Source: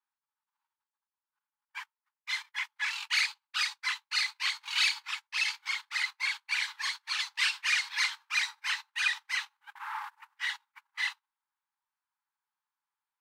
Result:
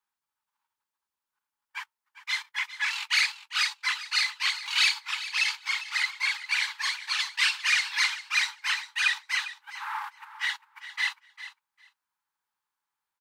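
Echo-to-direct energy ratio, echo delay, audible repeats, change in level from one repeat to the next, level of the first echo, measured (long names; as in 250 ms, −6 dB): −14.0 dB, 401 ms, 2, −16.5 dB, −14.0 dB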